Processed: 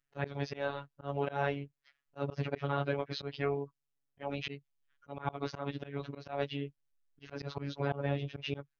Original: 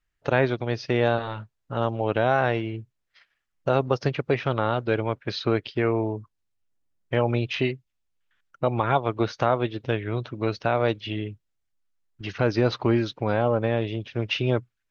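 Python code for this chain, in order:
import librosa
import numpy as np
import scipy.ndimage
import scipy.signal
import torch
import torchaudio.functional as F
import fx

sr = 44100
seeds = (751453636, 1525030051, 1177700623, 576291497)

y = fx.stretch_vocoder_free(x, sr, factor=0.59)
y = fx.robotise(y, sr, hz=141.0)
y = fx.auto_swell(y, sr, attack_ms=155.0)
y = F.gain(torch.from_numpy(y), -2.0).numpy()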